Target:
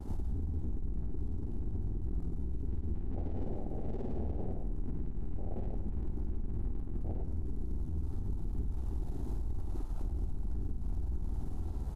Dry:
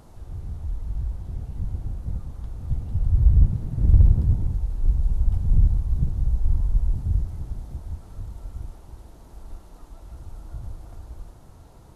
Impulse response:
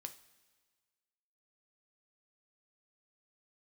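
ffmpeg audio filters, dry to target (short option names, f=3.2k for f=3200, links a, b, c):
-filter_complex "[0:a]aeval=exprs='0.501*sin(PI/2*3.16*val(0)/0.501)':c=same,equalizer=f=180:w=7.1:g=-12.5,aeval=exprs='(tanh(39.8*val(0)+0.3)-tanh(0.3))/39.8':c=same,aecho=1:1:50|112.5|190.6|288.3|410.4:0.631|0.398|0.251|0.158|0.1,afwtdn=0.0282,equalizer=f=125:t=o:w=0.33:g=-10,equalizer=f=400:t=o:w=0.33:g=4,equalizer=f=800:t=o:w=0.33:g=7,agate=range=-33dB:threshold=-36dB:ratio=3:detection=peak,asplit=2[a][b];[1:a]atrim=start_sample=2205,adelay=99[c];[b][c]afir=irnorm=-1:irlink=0,volume=-6dB[d];[a][d]amix=inputs=2:normalize=0,acompressor=threshold=-32dB:ratio=6,alimiter=level_in=7dB:limit=-24dB:level=0:latency=1:release=213,volume=-7dB,volume=4.5dB"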